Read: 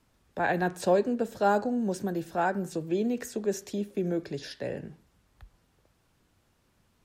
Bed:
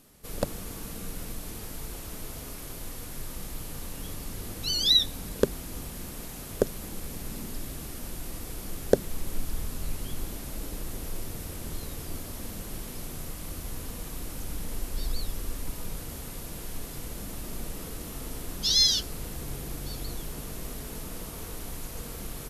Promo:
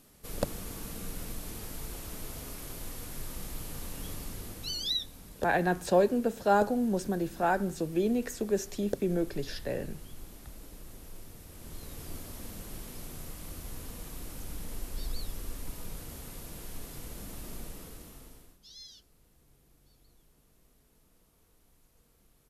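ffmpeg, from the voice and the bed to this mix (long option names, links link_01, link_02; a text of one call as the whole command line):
ffmpeg -i stem1.wav -i stem2.wav -filter_complex "[0:a]adelay=5050,volume=0dB[link_01];[1:a]volume=5dB,afade=type=out:start_time=4.17:duration=0.83:silence=0.316228,afade=type=in:start_time=11.47:duration=0.6:silence=0.446684,afade=type=out:start_time=17.51:duration=1.08:silence=0.0707946[link_02];[link_01][link_02]amix=inputs=2:normalize=0" out.wav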